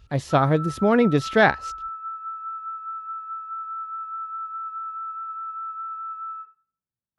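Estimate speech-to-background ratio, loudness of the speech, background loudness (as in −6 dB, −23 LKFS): 13.0 dB, −20.0 LKFS, −33.0 LKFS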